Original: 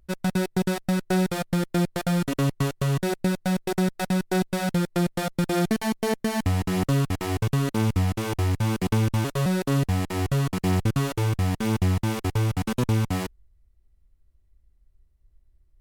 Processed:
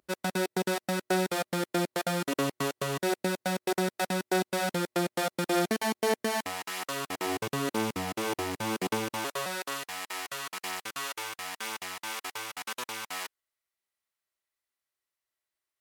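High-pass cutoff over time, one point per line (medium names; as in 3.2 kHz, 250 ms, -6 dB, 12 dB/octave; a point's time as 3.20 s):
6.24 s 330 Hz
6.75 s 1.2 kHz
7.26 s 330 Hz
8.85 s 330 Hz
9.82 s 1.1 kHz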